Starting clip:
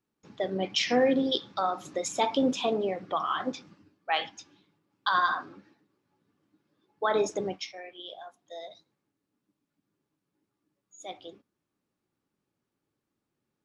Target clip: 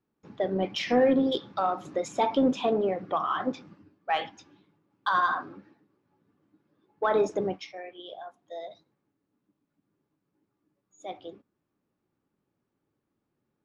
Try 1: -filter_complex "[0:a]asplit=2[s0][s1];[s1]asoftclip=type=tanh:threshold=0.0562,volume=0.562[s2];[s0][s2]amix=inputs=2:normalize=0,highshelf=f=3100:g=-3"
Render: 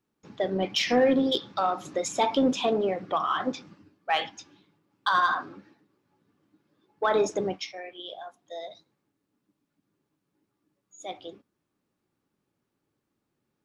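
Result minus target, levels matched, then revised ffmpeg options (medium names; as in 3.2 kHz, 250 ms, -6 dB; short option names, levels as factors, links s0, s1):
8 kHz band +8.5 dB
-filter_complex "[0:a]asplit=2[s0][s1];[s1]asoftclip=type=tanh:threshold=0.0562,volume=0.562[s2];[s0][s2]amix=inputs=2:normalize=0,highshelf=f=3100:g=-14.5"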